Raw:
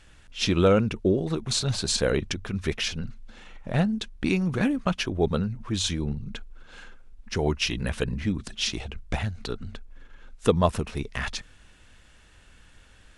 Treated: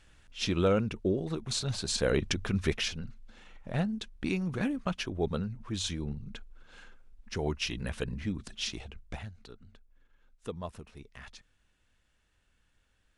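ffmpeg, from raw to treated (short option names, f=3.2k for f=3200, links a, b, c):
-af "volume=1dB,afade=t=in:st=1.92:d=0.56:silence=0.421697,afade=t=out:st=2.48:d=0.51:silence=0.398107,afade=t=out:st=8.6:d=0.9:silence=0.281838"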